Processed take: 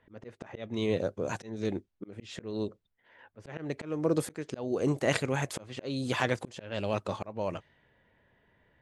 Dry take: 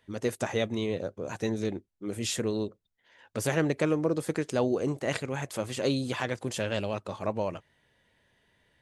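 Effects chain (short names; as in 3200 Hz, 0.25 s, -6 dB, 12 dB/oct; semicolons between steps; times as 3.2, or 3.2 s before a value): auto swell 0.373 s; low-pass opened by the level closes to 1800 Hz, open at -30.5 dBFS; gain +3 dB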